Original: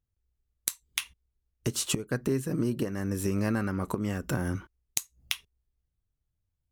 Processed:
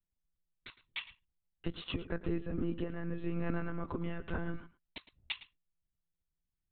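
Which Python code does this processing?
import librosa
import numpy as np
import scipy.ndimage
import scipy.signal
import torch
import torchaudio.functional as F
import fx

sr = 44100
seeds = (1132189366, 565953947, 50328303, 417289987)

y = fx.lpc_monotone(x, sr, seeds[0], pitch_hz=170.0, order=16)
y = y + 10.0 ** (-16.5 / 20.0) * np.pad(y, (int(110 * sr / 1000.0), 0))[:len(y)]
y = y * 10.0 ** (-6.0 / 20.0)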